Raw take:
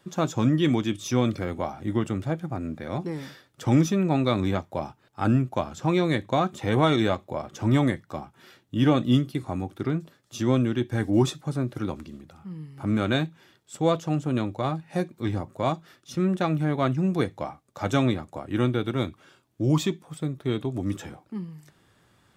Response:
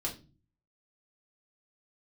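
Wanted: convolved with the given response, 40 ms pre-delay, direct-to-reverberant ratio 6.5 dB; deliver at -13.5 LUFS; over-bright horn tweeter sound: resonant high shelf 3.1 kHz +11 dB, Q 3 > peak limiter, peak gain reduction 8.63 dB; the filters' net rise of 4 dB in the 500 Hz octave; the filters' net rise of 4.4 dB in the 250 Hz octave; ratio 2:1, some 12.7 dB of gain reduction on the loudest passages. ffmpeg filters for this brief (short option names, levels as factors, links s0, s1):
-filter_complex "[0:a]equalizer=f=250:t=o:g=4.5,equalizer=f=500:t=o:g=4,acompressor=threshold=0.0158:ratio=2,asplit=2[s0][s1];[1:a]atrim=start_sample=2205,adelay=40[s2];[s1][s2]afir=irnorm=-1:irlink=0,volume=0.355[s3];[s0][s3]amix=inputs=2:normalize=0,highshelf=f=3100:t=q:w=3:g=11,volume=10,alimiter=limit=0.75:level=0:latency=1"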